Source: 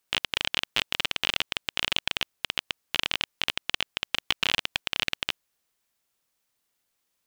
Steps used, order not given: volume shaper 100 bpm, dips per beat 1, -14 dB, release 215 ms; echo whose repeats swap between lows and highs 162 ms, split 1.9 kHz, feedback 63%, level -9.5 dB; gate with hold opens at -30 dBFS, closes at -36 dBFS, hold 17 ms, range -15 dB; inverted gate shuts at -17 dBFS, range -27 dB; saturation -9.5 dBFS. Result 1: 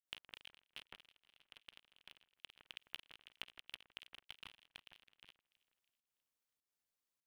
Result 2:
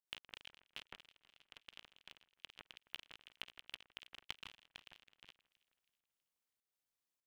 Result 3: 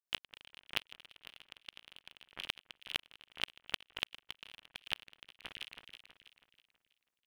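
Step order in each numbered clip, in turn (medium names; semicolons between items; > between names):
saturation > inverted gate > echo whose repeats swap between lows and highs > gate with hold > volume shaper; volume shaper > inverted gate > saturation > echo whose repeats swap between lows and highs > gate with hold; gate with hold > saturation > volume shaper > echo whose repeats swap between lows and highs > inverted gate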